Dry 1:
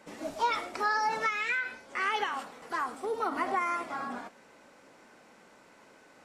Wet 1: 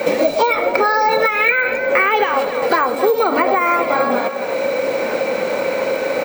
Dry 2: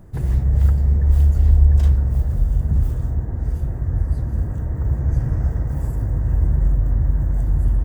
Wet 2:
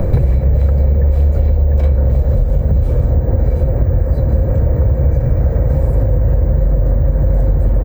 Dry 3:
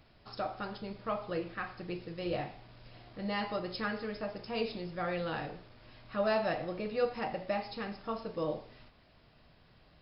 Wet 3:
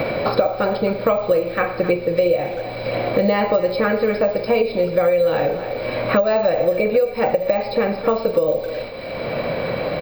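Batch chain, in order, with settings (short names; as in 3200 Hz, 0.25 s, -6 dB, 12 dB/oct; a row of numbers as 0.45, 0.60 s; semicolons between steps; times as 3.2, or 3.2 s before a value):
high shelf 3700 Hz -9.5 dB; small resonant body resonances 530/2300/4000 Hz, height 17 dB, ringing for 40 ms; compressor, threshold -25 dBFS; speakerphone echo 0.26 s, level -15 dB; careless resampling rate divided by 2×, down none, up hold; three-band squash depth 100%; normalise peaks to -2 dBFS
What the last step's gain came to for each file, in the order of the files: +15.0, +14.5, +12.5 dB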